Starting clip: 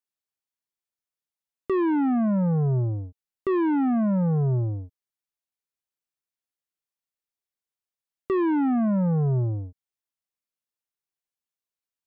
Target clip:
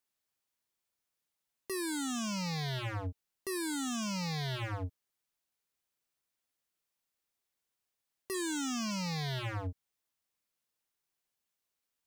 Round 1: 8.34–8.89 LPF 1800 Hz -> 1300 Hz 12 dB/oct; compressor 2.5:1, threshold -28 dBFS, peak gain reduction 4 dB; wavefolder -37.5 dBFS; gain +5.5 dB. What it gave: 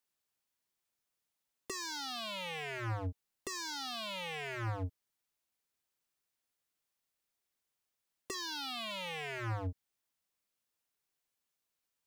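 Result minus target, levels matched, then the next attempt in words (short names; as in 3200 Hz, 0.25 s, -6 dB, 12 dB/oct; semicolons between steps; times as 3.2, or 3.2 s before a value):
compressor: peak gain reduction +4 dB
8.34–8.89 LPF 1800 Hz -> 1300 Hz 12 dB/oct; wavefolder -37.5 dBFS; gain +5.5 dB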